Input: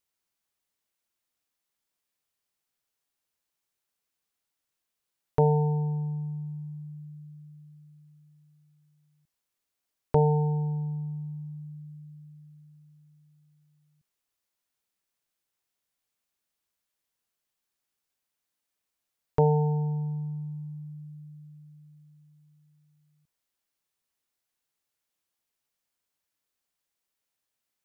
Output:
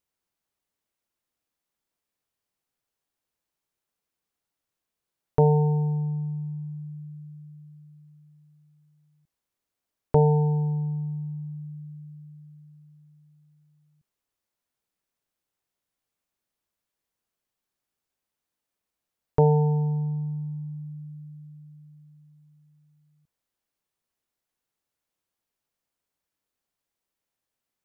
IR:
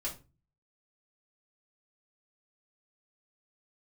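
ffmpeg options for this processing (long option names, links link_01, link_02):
-af "tiltshelf=frequency=1300:gain=3.5"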